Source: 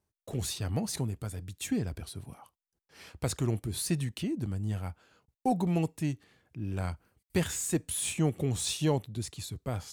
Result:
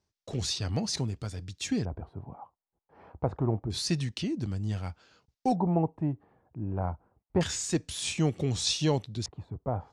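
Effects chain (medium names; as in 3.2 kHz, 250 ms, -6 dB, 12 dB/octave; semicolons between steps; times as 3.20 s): LFO low-pass square 0.27 Hz 870–5400 Hz; trim +1 dB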